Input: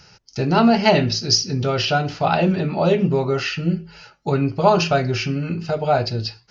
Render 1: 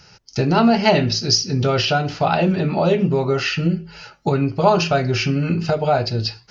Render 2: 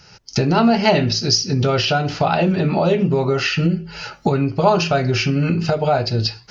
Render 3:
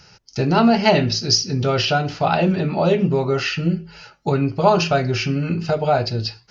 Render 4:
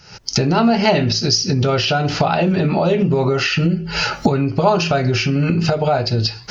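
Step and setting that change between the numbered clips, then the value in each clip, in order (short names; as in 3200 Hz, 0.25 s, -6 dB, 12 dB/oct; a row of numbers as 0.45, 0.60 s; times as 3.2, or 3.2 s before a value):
recorder AGC, rising by: 13, 35, 5.1, 87 dB/s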